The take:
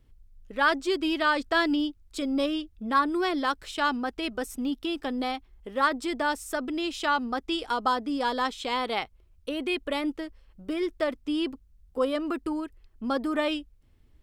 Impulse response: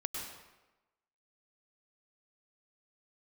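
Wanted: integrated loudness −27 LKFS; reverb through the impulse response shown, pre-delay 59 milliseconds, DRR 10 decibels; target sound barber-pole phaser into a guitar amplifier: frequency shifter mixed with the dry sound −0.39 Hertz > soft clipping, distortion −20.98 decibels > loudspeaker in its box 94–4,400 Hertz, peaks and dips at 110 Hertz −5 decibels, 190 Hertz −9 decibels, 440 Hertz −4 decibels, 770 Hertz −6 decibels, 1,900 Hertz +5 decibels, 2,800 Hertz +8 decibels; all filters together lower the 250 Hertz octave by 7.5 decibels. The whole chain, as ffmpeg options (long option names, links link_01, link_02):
-filter_complex "[0:a]equalizer=frequency=250:width_type=o:gain=-8,asplit=2[link_01][link_02];[1:a]atrim=start_sample=2205,adelay=59[link_03];[link_02][link_03]afir=irnorm=-1:irlink=0,volume=-11.5dB[link_04];[link_01][link_04]amix=inputs=2:normalize=0,asplit=2[link_05][link_06];[link_06]afreqshift=-0.39[link_07];[link_05][link_07]amix=inputs=2:normalize=1,asoftclip=threshold=-16dB,highpass=94,equalizer=frequency=110:width_type=q:width=4:gain=-5,equalizer=frequency=190:width_type=q:width=4:gain=-9,equalizer=frequency=440:width_type=q:width=4:gain=-4,equalizer=frequency=770:width_type=q:width=4:gain=-6,equalizer=frequency=1900:width_type=q:width=4:gain=5,equalizer=frequency=2800:width_type=q:width=4:gain=8,lowpass=frequency=4400:width=0.5412,lowpass=frequency=4400:width=1.3066,volume=5dB"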